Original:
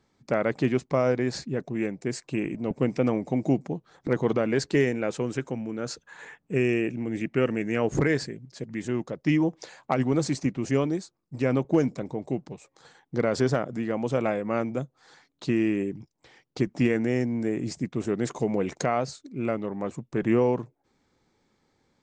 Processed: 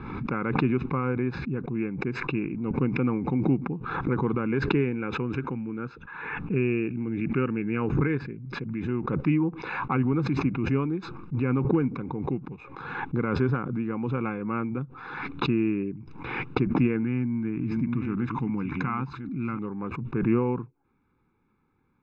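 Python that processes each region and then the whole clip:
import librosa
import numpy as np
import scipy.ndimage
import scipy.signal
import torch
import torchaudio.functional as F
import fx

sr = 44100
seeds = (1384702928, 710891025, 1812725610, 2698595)

y = fx.chain(x, sr, fx.reverse_delay(ms=565, wet_db=-10),
    fx.band_shelf(hz=510.0, db=-10.5, octaves=1.1), at=(17.03, 19.59))
y = scipy.signal.sosfilt(scipy.signal.butter(4, 2400.0, 'lowpass', fs=sr, output='sos'), y)
y = y + 1.0 * np.pad(y, (int(0.8 * sr / 1000.0), 0))[:len(y)]
y = fx.pre_swell(y, sr, db_per_s=40.0)
y = y * 10.0 ** (-4.5 / 20.0)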